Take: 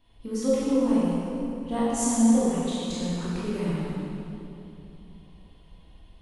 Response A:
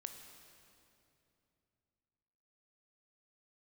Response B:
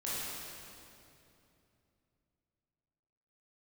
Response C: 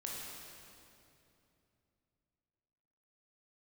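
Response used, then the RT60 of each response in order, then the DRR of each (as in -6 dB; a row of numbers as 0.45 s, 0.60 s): B; 2.8 s, 2.8 s, 2.8 s; 5.5 dB, -9.5 dB, -4.0 dB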